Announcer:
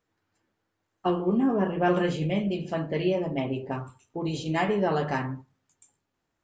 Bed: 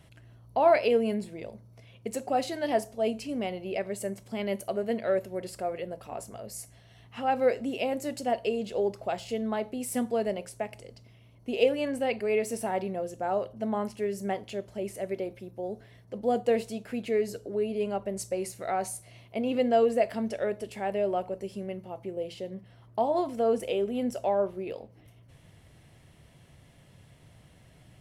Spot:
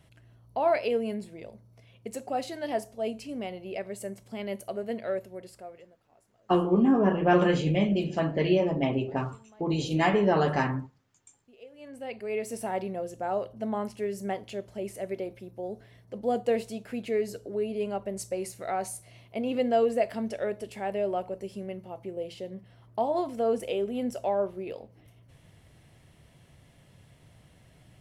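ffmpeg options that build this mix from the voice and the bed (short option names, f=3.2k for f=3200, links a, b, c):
-filter_complex "[0:a]adelay=5450,volume=2dB[a];[1:a]volume=21.5dB,afade=t=out:st=5.04:d=0.93:silence=0.0749894,afade=t=in:st=11.71:d=1.03:silence=0.0562341[b];[a][b]amix=inputs=2:normalize=0"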